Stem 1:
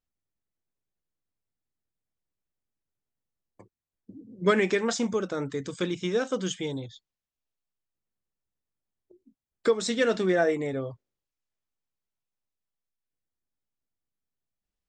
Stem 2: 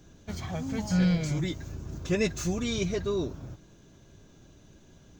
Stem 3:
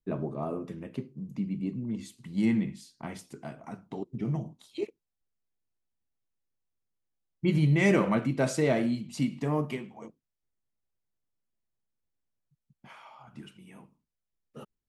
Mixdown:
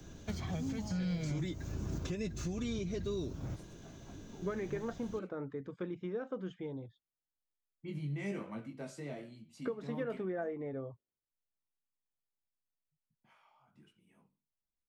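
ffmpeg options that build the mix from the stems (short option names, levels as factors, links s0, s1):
-filter_complex "[0:a]lowpass=1400,acompressor=threshold=0.0562:ratio=6,volume=0.355[s0];[1:a]volume=1.41[s1];[2:a]flanger=delay=18:depth=2.9:speed=1.1,adelay=400,volume=0.2[s2];[s1][s2]amix=inputs=2:normalize=0,acrossover=split=180|440|2100|6000[s3][s4][s5][s6][s7];[s3]acompressor=threshold=0.02:ratio=4[s8];[s4]acompressor=threshold=0.0251:ratio=4[s9];[s5]acompressor=threshold=0.00501:ratio=4[s10];[s6]acompressor=threshold=0.00447:ratio=4[s11];[s7]acompressor=threshold=0.00158:ratio=4[s12];[s8][s9][s10][s11][s12]amix=inputs=5:normalize=0,alimiter=level_in=1.68:limit=0.0631:level=0:latency=1:release=412,volume=0.596,volume=1[s13];[s0][s13]amix=inputs=2:normalize=0"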